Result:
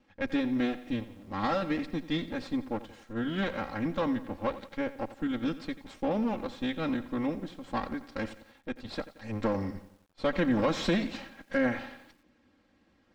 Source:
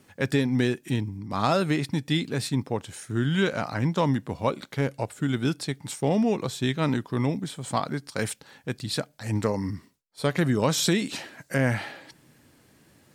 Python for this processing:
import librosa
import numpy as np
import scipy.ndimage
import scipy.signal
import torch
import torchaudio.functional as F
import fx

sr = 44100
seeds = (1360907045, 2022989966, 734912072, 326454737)

y = fx.lower_of_two(x, sr, delay_ms=3.7)
y = fx.leveller(y, sr, passes=1, at=(9.42, 11.67))
y = fx.air_absorb(y, sr, metres=180.0)
y = fx.echo_crushed(y, sr, ms=88, feedback_pct=55, bits=8, wet_db=-15)
y = y * librosa.db_to_amplitude(-5.5)